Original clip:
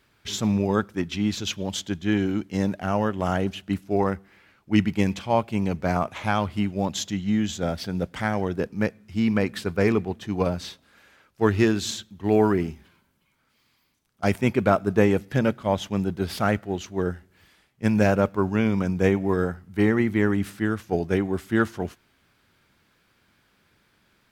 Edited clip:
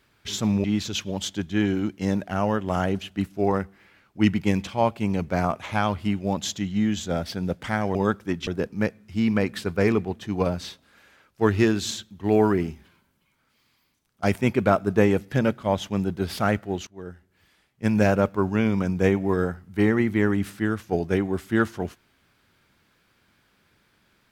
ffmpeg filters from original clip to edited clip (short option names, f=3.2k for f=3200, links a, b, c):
-filter_complex "[0:a]asplit=5[a][b][c][d][e];[a]atrim=end=0.642[f];[b]atrim=start=1.158:end=8.472[g];[c]atrim=start=0.638:end=1.162[h];[d]atrim=start=8.468:end=16.87,asetpts=PTS-STARTPTS,afade=t=out:st=8.398:d=0.004:c=hsin:silence=0.105925[i];[e]atrim=start=16.87,asetpts=PTS-STARTPTS,afade=t=in:d=1.12:silence=0.105925[j];[f][g]acrossfade=d=0.004:c1=hsin:c2=hsin[k];[k][h]acrossfade=d=0.004:c1=hsin:c2=hsin[l];[i][j]concat=n=2:v=0:a=1[m];[l][m]acrossfade=d=0.004:c1=hsin:c2=hsin"